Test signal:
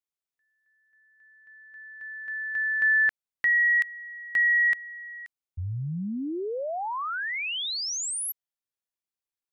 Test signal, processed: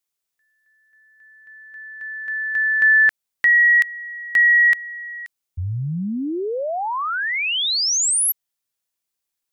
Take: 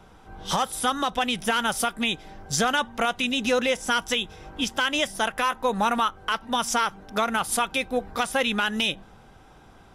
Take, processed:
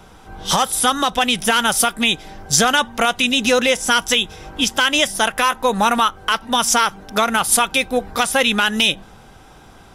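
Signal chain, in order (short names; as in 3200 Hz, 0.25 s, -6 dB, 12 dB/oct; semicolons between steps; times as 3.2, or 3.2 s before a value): high shelf 3600 Hz +6.5 dB; gain +6.5 dB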